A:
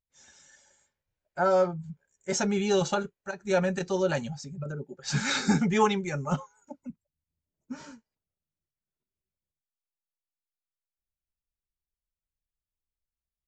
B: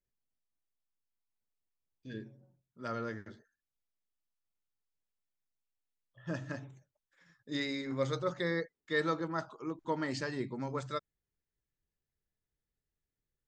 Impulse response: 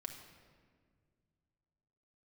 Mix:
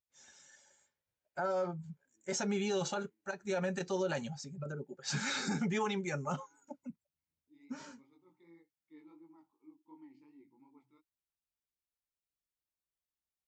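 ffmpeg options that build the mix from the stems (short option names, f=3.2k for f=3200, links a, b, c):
-filter_complex "[0:a]highpass=f=160:p=1,volume=-3.5dB,asplit=2[a][b];[1:a]asplit=3[c][d][e];[c]bandpass=f=300:t=q:w=8,volume=0dB[f];[d]bandpass=f=870:t=q:w=8,volume=-6dB[g];[e]bandpass=f=2.24k:t=q:w=8,volume=-9dB[h];[f][g][h]amix=inputs=3:normalize=0,flanger=delay=18:depth=4.7:speed=2.7,volume=-12dB[i];[b]apad=whole_len=594366[j];[i][j]sidechaincompress=threshold=-41dB:ratio=8:attack=12:release=1450[k];[a][k]amix=inputs=2:normalize=0,alimiter=level_in=2dB:limit=-24dB:level=0:latency=1:release=67,volume=-2dB"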